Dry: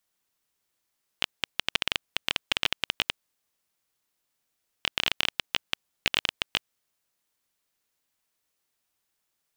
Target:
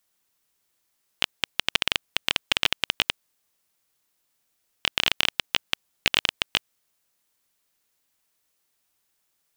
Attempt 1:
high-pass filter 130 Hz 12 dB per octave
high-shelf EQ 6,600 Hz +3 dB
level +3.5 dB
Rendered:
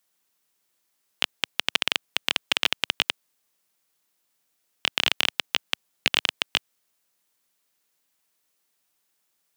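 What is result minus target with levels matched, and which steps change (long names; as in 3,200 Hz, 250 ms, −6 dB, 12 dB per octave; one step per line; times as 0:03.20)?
125 Hz band −3.5 dB
remove: high-pass filter 130 Hz 12 dB per octave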